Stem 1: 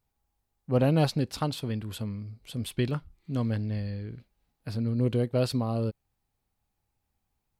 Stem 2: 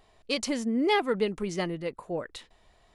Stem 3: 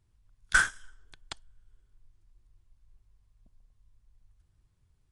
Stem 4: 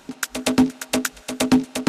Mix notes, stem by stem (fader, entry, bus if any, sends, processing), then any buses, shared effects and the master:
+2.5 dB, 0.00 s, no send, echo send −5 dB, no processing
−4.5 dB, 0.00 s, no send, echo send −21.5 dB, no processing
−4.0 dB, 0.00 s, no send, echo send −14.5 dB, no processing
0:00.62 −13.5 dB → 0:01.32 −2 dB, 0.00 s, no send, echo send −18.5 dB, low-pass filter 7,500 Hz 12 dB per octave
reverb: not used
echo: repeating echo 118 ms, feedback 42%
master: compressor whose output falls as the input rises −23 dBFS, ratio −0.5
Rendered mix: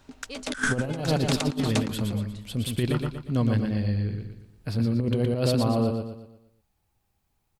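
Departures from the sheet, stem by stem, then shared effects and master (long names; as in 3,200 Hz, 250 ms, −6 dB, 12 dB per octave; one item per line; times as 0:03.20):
stem 2 −4.5 dB → −12.5 dB
stem 3 −4.0 dB → +6.0 dB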